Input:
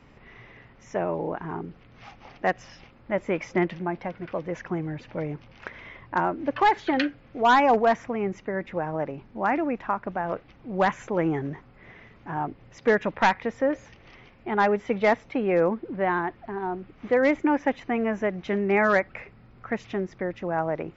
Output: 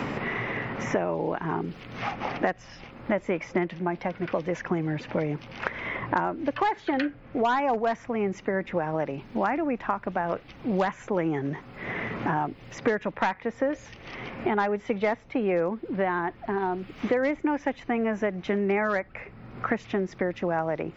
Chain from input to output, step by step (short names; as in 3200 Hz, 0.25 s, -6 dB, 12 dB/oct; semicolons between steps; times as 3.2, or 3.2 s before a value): three-band squash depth 100%; gain -2 dB